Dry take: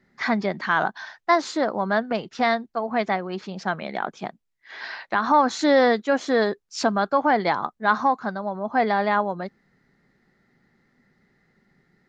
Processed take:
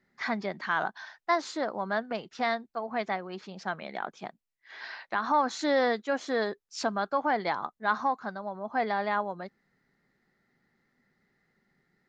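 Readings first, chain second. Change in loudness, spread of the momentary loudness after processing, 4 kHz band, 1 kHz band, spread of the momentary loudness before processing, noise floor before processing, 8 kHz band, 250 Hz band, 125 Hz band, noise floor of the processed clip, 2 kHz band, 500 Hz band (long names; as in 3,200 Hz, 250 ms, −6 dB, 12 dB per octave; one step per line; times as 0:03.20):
−7.5 dB, 13 LU, −6.5 dB, −7.0 dB, 13 LU, −70 dBFS, can't be measured, −9.5 dB, −10.0 dB, −78 dBFS, −6.5 dB, −8.0 dB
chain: low-shelf EQ 380 Hz −4.5 dB
level −6.5 dB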